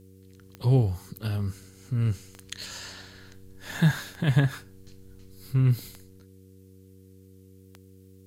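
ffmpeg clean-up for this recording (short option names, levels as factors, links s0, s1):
-af "adeclick=t=4,bandreject=f=94.9:t=h:w=4,bandreject=f=189.8:t=h:w=4,bandreject=f=284.7:t=h:w=4,bandreject=f=379.6:t=h:w=4,bandreject=f=474.5:t=h:w=4,agate=range=0.0891:threshold=0.00631"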